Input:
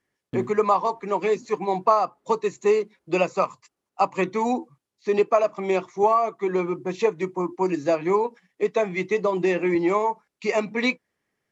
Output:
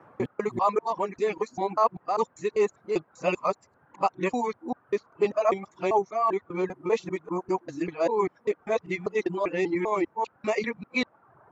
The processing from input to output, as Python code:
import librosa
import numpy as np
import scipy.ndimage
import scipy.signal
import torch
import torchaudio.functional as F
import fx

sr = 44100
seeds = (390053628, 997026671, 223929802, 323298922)

y = fx.local_reverse(x, sr, ms=197.0)
y = fx.dmg_noise_band(y, sr, seeds[0], low_hz=95.0, high_hz=1300.0, level_db=-50.0)
y = fx.dereverb_blind(y, sr, rt60_s=0.9)
y = F.gain(torch.from_numpy(y), -3.5).numpy()